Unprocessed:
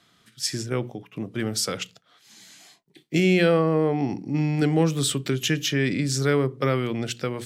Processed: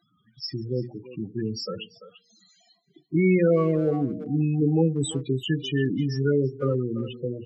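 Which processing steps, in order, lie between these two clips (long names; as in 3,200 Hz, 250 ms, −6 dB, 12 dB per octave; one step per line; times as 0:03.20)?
hum removal 235.3 Hz, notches 3
spectral peaks only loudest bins 8
far-end echo of a speakerphone 340 ms, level −13 dB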